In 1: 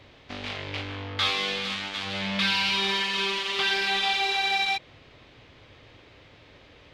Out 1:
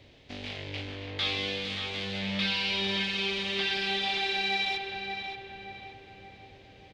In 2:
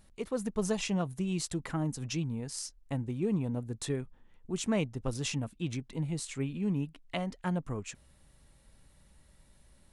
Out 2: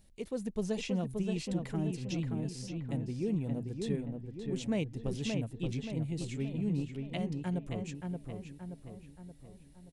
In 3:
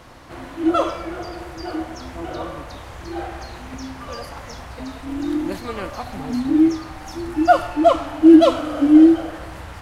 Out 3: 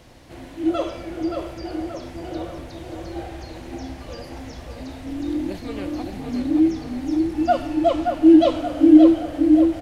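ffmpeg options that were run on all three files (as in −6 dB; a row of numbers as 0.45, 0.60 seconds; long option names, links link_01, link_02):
-filter_complex "[0:a]acrossover=split=5000[link_01][link_02];[link_02]acompressor=threshold=-50dB:ratio=4:attack=1:release=60[link_03];[link_01][link_03]amix=inputs=2:normalize=0,equalizer=frequency=1200:width=1.4:gain=-11,asplit=2[link_04][link_05];[link_05]adelay=576,lowpass=frequency=2300:poles=1,volume=-4dB,asplit=2[link_06][link_07];[link_07]adelay=576,lowpass=frequency=2300:poles=1,volume=0.52,asplit=2[link_08][link_09];[link_09]adelay=576,lowpass=frequency=2300:poles=1,volume=0.52,asplit=2[link_10][link_11];[link_11]adelay=576,lowpass=frequency=2300:poles=1,volume=0.52,asplit=2[link_12][link_13];[link_13]adelay=576,lowpass=frequency=2300:poles=1,volume=0.52,asplit=2[link_14][link_15];[link_15]adelay=576,lowpass=frequency=2300:poles=1,volume=0.52,asplit=2[link_16][link_17];[link_17]adelay=576,lowpass=frequency=2300:poles=1,volume=0.52[link_18];[link_06][link_08][link_10][link_12][link_14][link_16][link_18]amix=inputs=7:normalize=0[link_19];[link_04][link_19]amix=inputs=2:normalize=0,volume=-2dB"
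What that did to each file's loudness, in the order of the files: −4.5, −1.5, −2.5 LU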